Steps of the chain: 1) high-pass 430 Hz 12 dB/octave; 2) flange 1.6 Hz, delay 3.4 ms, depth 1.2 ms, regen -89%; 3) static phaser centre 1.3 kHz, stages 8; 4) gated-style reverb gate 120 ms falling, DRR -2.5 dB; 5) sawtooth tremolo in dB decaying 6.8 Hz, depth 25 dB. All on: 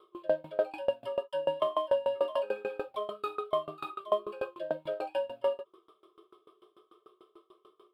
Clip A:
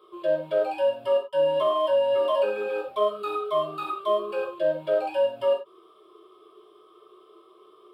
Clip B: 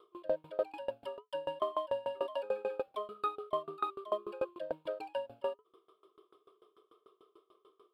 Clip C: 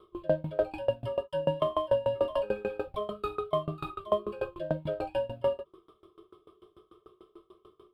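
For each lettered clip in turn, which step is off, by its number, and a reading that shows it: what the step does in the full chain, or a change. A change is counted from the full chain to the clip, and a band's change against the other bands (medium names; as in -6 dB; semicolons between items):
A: 5, momentary loudness spread change -1 LU; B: 4, loudness change -5.0 LU; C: 1, 125 Hz band +17.5 dB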